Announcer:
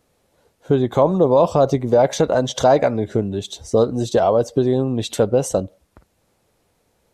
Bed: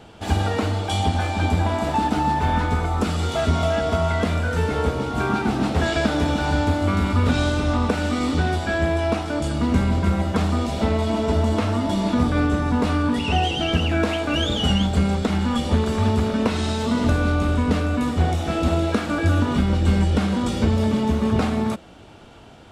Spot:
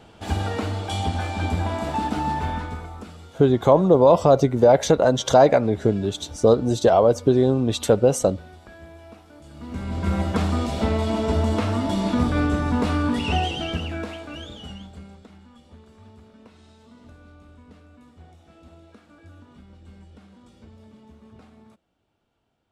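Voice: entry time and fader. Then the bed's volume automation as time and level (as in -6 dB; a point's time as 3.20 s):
2.70 s, 0.0 dB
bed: 2.38 s -4 dB
3.36 s -23 dB
9.41 s -23 dB
10.15 s -1.5 dB
13.31 s -1.5 dB
15.51 s -28.5 dB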